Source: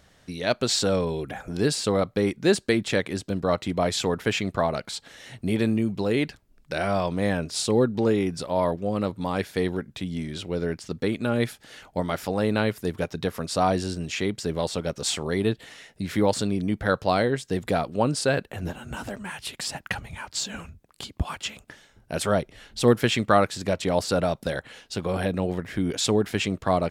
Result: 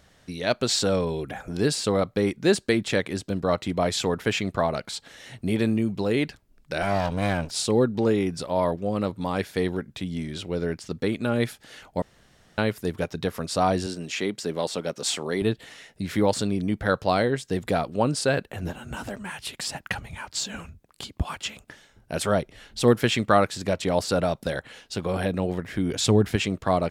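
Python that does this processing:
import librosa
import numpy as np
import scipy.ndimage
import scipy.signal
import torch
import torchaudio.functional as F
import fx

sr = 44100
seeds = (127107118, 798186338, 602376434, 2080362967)

y = fx.lower_of_two(x, sr, delay_ms=1.3, at=(6.82, 7.51))
y = fx.highpass(y, sr, hz=190.0, slope=12, at=(13.86, 15.42))
y = fx.peak_eq(y, sr, hz=65.0, db=11.0, octaves=2.5, at=(25.91, 26.36))
y = fx.edit(y, sr, fx.room_tone_fill(start_s=12.02, length_s=0.56), tone=tone)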